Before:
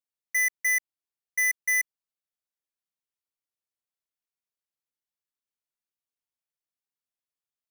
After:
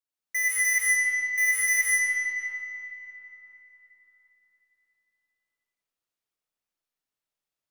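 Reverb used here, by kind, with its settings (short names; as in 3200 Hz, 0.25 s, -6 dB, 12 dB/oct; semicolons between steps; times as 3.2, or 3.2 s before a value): digital reverb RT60 4 s, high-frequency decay 0.65×, pre-delay 55 ms, DRR -7.5 dB; gain -3 dB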